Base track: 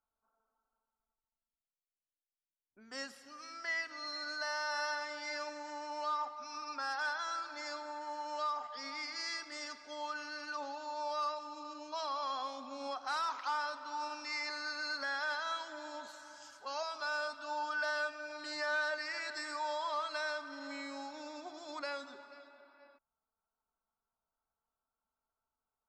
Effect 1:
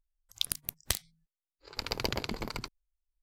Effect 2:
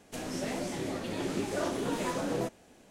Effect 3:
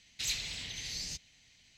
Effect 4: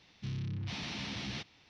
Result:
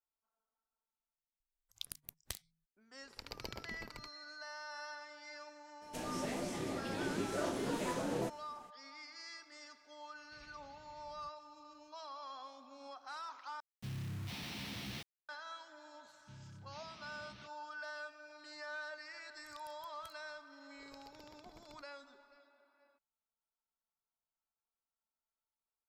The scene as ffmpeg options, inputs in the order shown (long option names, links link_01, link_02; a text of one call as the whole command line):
ffmpeg -i bed.wav -i cue0.wav -i cue1.wav -i cue2.wav -i cue3.wav -filter_complex "[1:a]asplit=2[link_01][link_02];[4:a]asplit=2[link_03][link_04];[0:a]volume=-10.5dB[link_05];[3:a]lowpass=1300[link_06];[link_03]acrusher=bits=7:mix=0:aa=0.000001[link_07];[link_02]acompressor=threshold=-44dB:ratio=5:attack=1:release=348:knee=1:detection=peak[link_08];[link_05]asplit=2[link_09][link_10];[link_09]atrim=end=13.604[link_11];[link_07]atrim=end=1.69,asetpts=PTS-STARTPTS,volume=-5dB[link_12];[link_10]atrim=start=15.286[link_13];[link_01]atrim=end=3.22,asetpts=PTS-STARTPTS,volume=-13.5dB,afade=type=in:duration=0.004:curve=hsin,afade=type=out:start_time=3.216:duration=0.004:curve=hsin,adelay=1400[link_14];[2:a]atrim=end=2.9,asetpts=PTS-STARTPTS,volume=-5dB,afade=type=in:duration=0.02,afade=type=out:start_time=2.88:duration=0.02,adelay=256221S[link_15];[link_06]atrim=end=1.77,asetpts=PTS-STARTPTS,volume=-14.5dB,afade=type=in:duration=0.004:curve=hsin,afade=type=out:start_time=1.766:duration=0.004:curve=hsin,adelay=10120[link_16];[link_04]atrim=end=1.69,asetpts=PTS-STARTPTS,volume=-17dB,afade=type=in:duration=0.004:curve=hsin,afade=type=out:start_time=1.686:duration=0.004:curve=hsin,adelay=16050[link_17];[link_08]atrim=end=3.22,asetpts=PTS-STARTPTS,volume=-9dB,afade=type=in:duration=0.004:curve=hsin,afade=type=out:start_time=3.216:duration=0.004:curve=hsin,adelay=19150[link_18];[link_11][link_12]acrossfade=duration=0.004:curve1=hsin:curve2=hsin[link_19];[link_19][link_13]acrossfade=duration=0.004:curve1=hsin:curve2=hsin[link_20];[link_20][link_14][link_15][link_16][link_17][link_18]amix=inputs=6:normalize=0" out.wav